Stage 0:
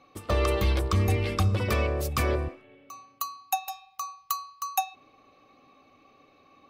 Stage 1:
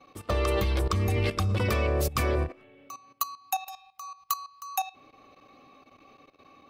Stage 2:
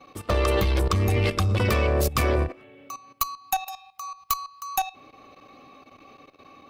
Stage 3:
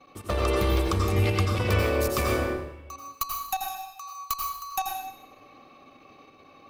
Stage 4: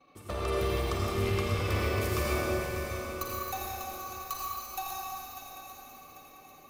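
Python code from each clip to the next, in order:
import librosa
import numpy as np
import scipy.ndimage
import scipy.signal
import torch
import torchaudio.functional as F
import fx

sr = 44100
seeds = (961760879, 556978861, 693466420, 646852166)

y1 = fx.level_steps(x, sr, step_db=15)
y1 = y1 * librosa.db_to_amplitude(5.0)
y2 = fx.diode_clip(y1, sr, knee_db=-21.0)
y2 = y2 * librosa.db_to_amplitude(5.5)
y3 = fx.rev_plate(y2, sr, seeds[0], rt60_s=0.8, hf_ratio=0.9, predelay_ms=75, drr_db=0.0)
y3 = y3 * librosa.db_to_amplitude(-4.5)
y4 = fx.echo_swing(y3, sr, ms=794, ratio=3, feedback_pct=39, wet_db=-9.5)
y4 = fx.rev_schroeder(y4, sr, rt60_s=2.9, comb_ms=38, drr_db=-2.0)
y4 = y4 * librosa.db_to_amplitude(-8.5)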